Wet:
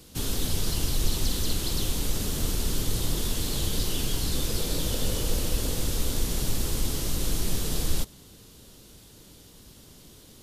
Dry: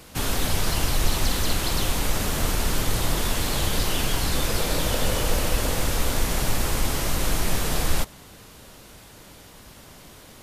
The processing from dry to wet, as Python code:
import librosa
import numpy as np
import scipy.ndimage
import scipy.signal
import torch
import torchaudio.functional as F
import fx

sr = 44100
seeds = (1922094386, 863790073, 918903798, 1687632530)

y = fx.band_shelf(x, sr, hz=1200.0, db=-9.0, octaves=2.4)
y = y * 10.0 ** (-3.0 / 20.0)